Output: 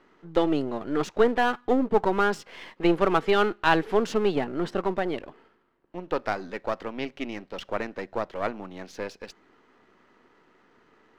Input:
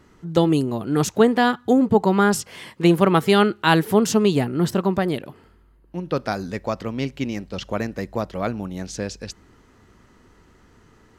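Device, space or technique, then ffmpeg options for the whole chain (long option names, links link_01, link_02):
crystal radio: -af "highpass=310,lowpass=3200,aeval=exprs='if(lt(val(0),0),0.447*val(0),val(0))':channel_layout=same"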